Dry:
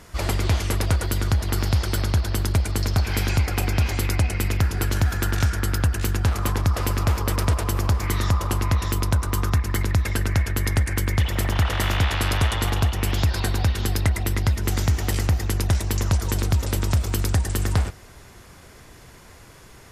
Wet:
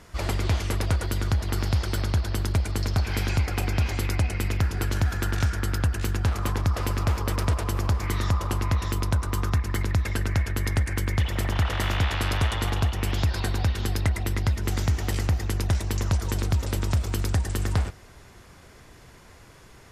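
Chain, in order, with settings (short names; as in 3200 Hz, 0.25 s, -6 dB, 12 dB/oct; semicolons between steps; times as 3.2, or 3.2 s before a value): high shelf 9000 Hz -6.5 dB; gain -3 dB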